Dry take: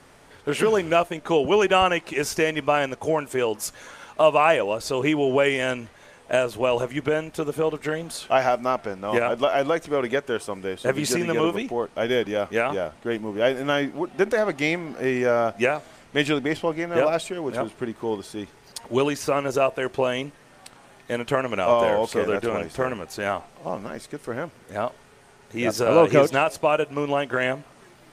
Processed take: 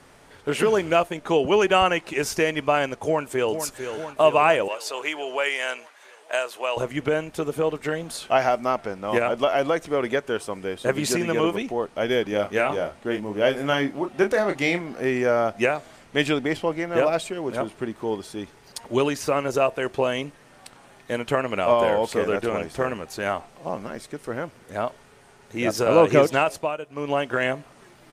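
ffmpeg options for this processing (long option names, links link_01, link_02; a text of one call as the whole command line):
ffmpeg -i in.wav -filter_complex "[0:a]asplit=2[link_01][link_02];[link_02]afade=type=in:start_time=3.02:duration=0.01,afade=type=out:start_time=3.56:duration=0.01,aecho=0:1:450|900|1350|1800|2250|2700|3150|3600|4050|4500|4950:0.375837|0.263086|0.18416|0.128912|0.0902386|0.063167|0.0442169|0.0309518|0.0216663|0.0151664|0.0106165[link_03];[link_01][link_03]amix=inputs=2:normalize=0,asettb=1/sr,asplit=3[link_04][link_05][link_06];[link_04]atrim=end=4.684[link_07];[link_05]atrim=start=4.68:end=6.77,asetpts=PTS-STARTPTS,afade=type=in:duration=0.004:curve=qsin,afade=type=out:start_time=2.086:duration=0.004:curve=qsin,highpass=750[link_08];[link_06]atrim=start=6.766[link_09];[link_07][link_08]acrossfade=duration=0.004:curve1=hsin:curve2=qsin[link_10];[link_10][link_09]acrossfade=duration=0.004:curve1=qsin:curve2=hsin,asettb=1/sr,asplit=3[link_11][link_12][link_13];[link_11]atrim=end=12.294[link_14];[link_12]atrim=start=12.29:end=14.81,asetpts=PTS-STARTPTS,afade=type=in:duration=0.004:curve=qsin,afade=type=out:start_time=2.516:duration=0.004:curve=qsin,asplit=2[link_15][link_16];[link_16]adelay=29,volume=-7dB[link_17];[link_15][link_17]amix=inputs=2:normalize=0,atrim=end_sample=111132[link_18];[link_13]atrim=start=14.806[link_19];[link_14][link_18]acrossfade=duration=0.004:curve1=hsin:curve2=qsin[link_20];[link_20][link_19]acrossfade=duration=0.004:curve1=qsin:curve2=hsin,asettb=1/sr,asplit=3[link_21][link_22][link_23];[link_21]atrim=end=21.354[link_24];[link_22]atrim=start=21.35:end=22.05,asetpts=PTS-STARTPTS,afade=type=in:duration=0.004:curve=qsin,afade=type=out:start_time=0.696:duration=0.004:curve=qsin,bandreject=frequency=6100:width=6.7[link_25];[link_23]atrim=start=22.046[link_26];[link_24][link_25]acrossfade=duration=0.004:curve1=hsin:curve2=qsin[link_27];[link_27][link_26]acrossfade=duration=0.004:curve1=qsin:curve2=hsin,asplit=3[link_28][link_29][link_30];[link_28]atrim=end=26.76,asetpts=PTS-STARTPTS,afade=type=out:start_time=26.51:duration=0.25:silence=0.281838[link_31];[link_29]atrim=start=26.76:end=26.89,asetpts=PTS-STARTPTS,volume=-11dB[link_32];[link_30]atrim=start=26.89,asetpts=PTS-STARTPTS,afade=type=in:duration=0.25:silence=0.281838[link_33];[link_31][link_32][link_33]concat=n=3:v=0:a=1" out.wav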